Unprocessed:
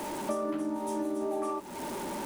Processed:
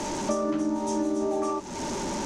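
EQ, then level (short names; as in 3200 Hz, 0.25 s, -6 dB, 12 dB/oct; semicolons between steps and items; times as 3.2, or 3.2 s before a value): synth low-pass 6300 Hz, resonance Q 3.5; low shelf 150 Hz +11 dB; +3.5 dB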